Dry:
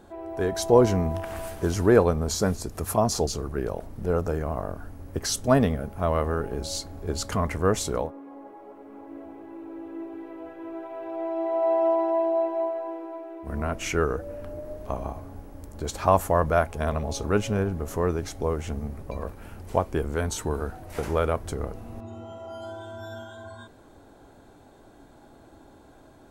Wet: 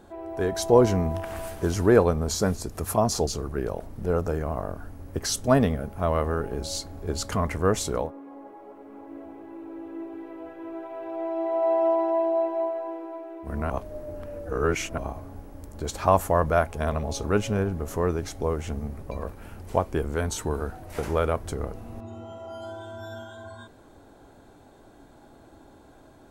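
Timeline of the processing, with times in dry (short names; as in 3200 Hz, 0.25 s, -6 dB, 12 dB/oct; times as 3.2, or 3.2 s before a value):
13.7–14.98 reverse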